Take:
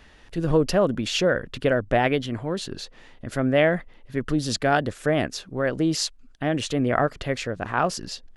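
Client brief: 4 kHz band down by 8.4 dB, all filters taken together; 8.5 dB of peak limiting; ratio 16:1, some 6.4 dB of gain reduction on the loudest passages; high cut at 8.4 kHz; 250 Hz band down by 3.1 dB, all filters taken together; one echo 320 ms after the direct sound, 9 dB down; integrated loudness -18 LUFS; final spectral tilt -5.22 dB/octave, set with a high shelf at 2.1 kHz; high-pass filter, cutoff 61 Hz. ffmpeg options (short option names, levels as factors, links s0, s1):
-af "highpass=61,lowpass=8400,equalizer=f=250:t=o:g=-4,highshelf=f=2100:g=-4.5,equalizer=f=4000:t=o:g=-6.5,acompressor=threshold=0.0794:ratio=16,alimiter=limit=0.1:level=0:latency=1,aecho=1:1:320:0.355,volume=4.73"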